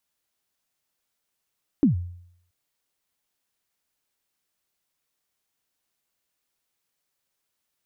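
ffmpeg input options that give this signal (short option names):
-f lavfi -i "aevalsrc='0.251*pow(10,-3*t/0.68)*sin(2*PI*(320*0.123/log(88/320)*(exp(log(88/320)*min(t,0.123)/0.123)-1)+88*max(t-0.123,0)))':d=0.68:s=44100"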